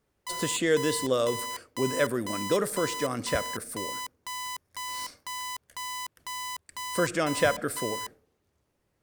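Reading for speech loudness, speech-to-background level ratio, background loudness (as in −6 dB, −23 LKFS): −29.0 LKFS, 6.5 dB, −35.5 LKFS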